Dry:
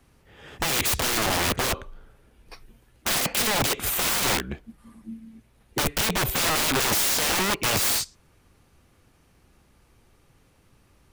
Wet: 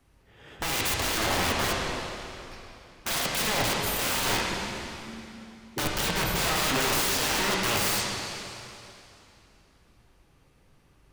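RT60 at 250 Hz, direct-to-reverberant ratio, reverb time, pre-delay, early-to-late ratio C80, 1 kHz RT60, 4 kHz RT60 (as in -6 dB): 2.9 s, -3.0 dB, 2.9 s, 5 ms, 0.5 dB, 2.9 s, 2.7 s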